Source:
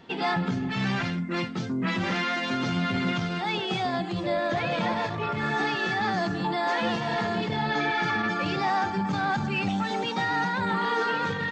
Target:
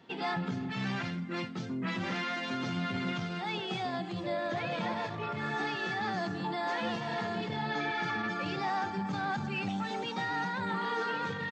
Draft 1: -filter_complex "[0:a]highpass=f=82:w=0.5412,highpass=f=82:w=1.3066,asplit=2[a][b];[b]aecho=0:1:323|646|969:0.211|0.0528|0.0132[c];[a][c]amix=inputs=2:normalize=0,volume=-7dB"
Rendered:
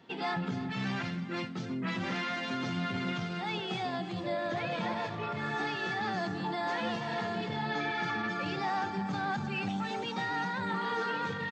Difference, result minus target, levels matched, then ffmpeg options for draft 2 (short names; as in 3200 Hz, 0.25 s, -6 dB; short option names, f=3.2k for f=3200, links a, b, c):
echo-to-direct +7.5 dB
-filter_complex "[0:a]highpass=f=82:w=0.5412,highpass=f=82:w=1.3066,asplit=2[a][b];[b]aecho=0:1:323|646:0.0891|0.0223[c];[a][c]amix=inputs=2:normalize=0,volume=-7dB"